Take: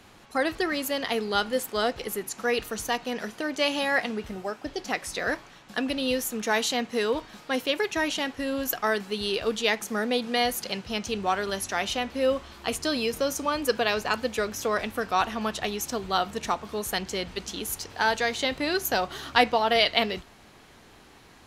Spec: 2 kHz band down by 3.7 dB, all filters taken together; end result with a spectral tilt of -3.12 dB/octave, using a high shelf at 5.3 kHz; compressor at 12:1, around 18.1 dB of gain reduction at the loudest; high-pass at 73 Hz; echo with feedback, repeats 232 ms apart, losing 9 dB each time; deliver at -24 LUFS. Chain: high-pass 73 Hz; peaking EQ 2 kHz -4 dB; treble shelf 5.3 kHz -5 dB; compression 12:1, threshold -34 dBFS; feedback delay 232 ms, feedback 35%, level -9 dB; trim +14 dB

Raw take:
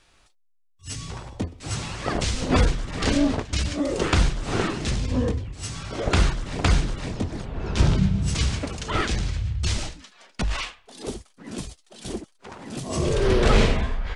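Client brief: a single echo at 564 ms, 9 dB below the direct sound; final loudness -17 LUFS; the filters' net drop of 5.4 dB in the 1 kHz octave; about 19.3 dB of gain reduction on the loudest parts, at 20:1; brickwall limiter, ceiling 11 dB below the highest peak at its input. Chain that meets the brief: peaking EQ 1 kHz -7.5 dB; compression 20:1, threshold -33 dBFS; peak limiter -32.5 dBFS; delay 564 ms -9 dB; trim +25 dB

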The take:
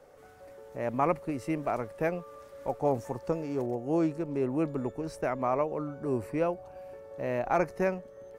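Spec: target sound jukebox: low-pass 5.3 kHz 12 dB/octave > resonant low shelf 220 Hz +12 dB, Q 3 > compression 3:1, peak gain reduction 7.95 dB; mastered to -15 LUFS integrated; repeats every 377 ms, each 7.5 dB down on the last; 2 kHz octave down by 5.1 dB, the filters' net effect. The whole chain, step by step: low-pass 5.3 kHz 12 dB/octave; resonant low shelf 220 Hz +12 dB, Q 3; peaking EQ 2 kHz -6.5 dB; feedback delay 377 ms, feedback 42%, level -7.5 dB; compression 3:1, threshold -24 dBFS; trim +13 dB

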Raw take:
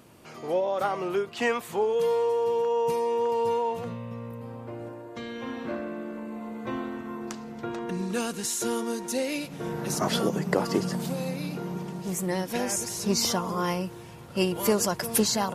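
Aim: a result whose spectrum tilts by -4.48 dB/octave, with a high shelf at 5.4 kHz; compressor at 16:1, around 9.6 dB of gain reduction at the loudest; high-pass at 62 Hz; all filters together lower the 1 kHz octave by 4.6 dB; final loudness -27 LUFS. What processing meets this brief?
high-pass 62 Hz; peaking EQ 1 kHz -5.5 dB; treble shelf 5.4 kHz -3.5 dB; compression 16:1, threshold -28 dBFS; trim +7 dB

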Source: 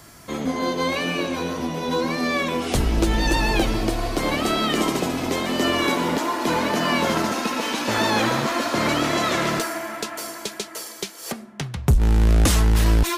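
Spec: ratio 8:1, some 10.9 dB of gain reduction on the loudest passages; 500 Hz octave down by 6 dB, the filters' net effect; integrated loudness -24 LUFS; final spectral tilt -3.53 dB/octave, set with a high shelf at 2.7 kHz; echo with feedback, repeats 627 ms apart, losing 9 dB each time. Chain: peaking EQ 500 Hz -8.5 dB; treble shelf 2.7 kHz +7 dB; compression 8:1, threshold -25 dBFS; feedback delay 627 ms, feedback 35%, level -9 dB; trim +3.5 dB

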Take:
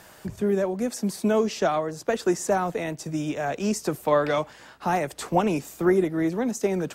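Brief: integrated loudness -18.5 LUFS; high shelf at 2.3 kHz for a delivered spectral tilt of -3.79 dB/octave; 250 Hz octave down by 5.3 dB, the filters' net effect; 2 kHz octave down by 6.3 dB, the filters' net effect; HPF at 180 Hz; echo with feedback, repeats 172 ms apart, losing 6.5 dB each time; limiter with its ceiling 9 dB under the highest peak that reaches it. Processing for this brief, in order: high-pass 180 Hz; peaking EQ 250 Hz -6 dB; peaking EQ 2 kHz -4.5 dB; treble shelf 2.3 kHz -8 dB; peak limiter -20 dBFS; feedback delay 172 ms, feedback 47%, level -6.5 dB; trim +11.5 dB

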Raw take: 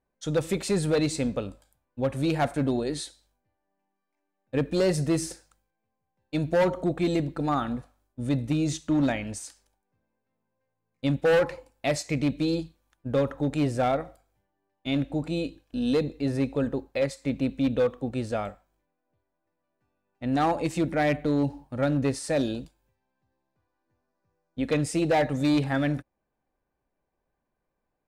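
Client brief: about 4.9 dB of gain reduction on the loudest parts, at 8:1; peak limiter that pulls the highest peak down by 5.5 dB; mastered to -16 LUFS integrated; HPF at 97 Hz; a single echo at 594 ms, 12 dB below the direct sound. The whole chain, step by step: high-pass 97 Hz; compression 8:1, threshold -24 dBFS; peak limiter -21.5 dBFS; delay 594 ms -12 dB; trim +16 dB

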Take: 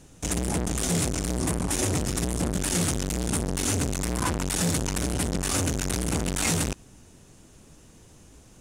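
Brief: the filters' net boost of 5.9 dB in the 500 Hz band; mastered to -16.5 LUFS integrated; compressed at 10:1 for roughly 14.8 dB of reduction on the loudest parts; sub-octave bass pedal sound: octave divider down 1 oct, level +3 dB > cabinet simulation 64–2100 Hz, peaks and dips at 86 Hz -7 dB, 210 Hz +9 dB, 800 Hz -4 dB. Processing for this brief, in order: peaking EQ 500 Hz +7.5 dB; compression 10:1, threshold -35 dBFS; octave divider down 1 oct, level +3 dB; cabinet simulation 64–2100 Hz, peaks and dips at 86 Hz -7 dB, 210 Hz +9 dB, 800 Hz -4 dB; trim +23 dB

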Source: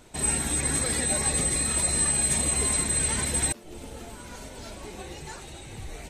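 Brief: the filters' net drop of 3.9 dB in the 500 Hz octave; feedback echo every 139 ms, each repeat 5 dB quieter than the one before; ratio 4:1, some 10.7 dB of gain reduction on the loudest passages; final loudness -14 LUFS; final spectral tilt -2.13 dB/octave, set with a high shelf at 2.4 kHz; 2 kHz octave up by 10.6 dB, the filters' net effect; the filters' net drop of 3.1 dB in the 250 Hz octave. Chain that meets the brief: peaking EQ 250 Hz -3 dB; peaking EQ 500 Hz -5 dB; peaking EQ 2 kHz +9 dB; treble shelf 2.4 kHz +7.5 dB; compression 4:1, threshold -28 dBFS; feedback delay 139 ms, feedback 56%, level -5 dB; trim +12 dB

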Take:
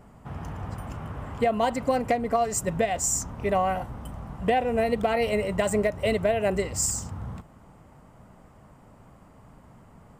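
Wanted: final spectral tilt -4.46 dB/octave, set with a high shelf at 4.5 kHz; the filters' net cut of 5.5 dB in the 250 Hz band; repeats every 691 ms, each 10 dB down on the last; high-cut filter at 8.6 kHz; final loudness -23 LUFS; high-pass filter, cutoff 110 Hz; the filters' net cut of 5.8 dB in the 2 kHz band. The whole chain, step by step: high-pass 110 Hz; low-pass 8.6 kHz; peaking EQ 250 Hz -6.5 dB; peaking EQ 2 kHz -5.5 dB; treble shelf 4.5 kHz -6.5 dB; feedback delay 691 ms, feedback 32%, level -10 dB; trim +5.5 dB

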